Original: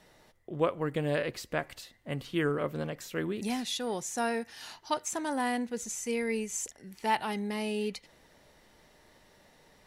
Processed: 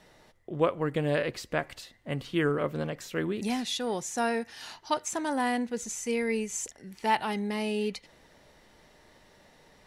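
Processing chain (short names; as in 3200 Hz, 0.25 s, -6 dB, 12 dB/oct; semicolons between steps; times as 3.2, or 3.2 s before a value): high shelf 12000 Hz -9 dB; gain +2.5 dB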